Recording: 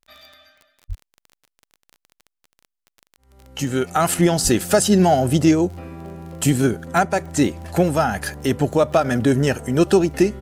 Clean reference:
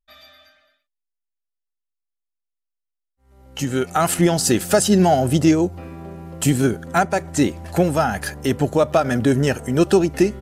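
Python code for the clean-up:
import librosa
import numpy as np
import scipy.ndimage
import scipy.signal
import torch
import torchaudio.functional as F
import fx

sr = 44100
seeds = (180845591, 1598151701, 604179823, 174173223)

y = fx.fix_declick_ar(x, sr, threshold=6.5)
y = fx.highpass(y, sr, hz=140.0, slope=24, at=(0.88, 1.0), fade=0.02)
y = fx.highpass(y, sr, hz=140.0, slope=24, at=(4.43, 4.55), fade=0.02)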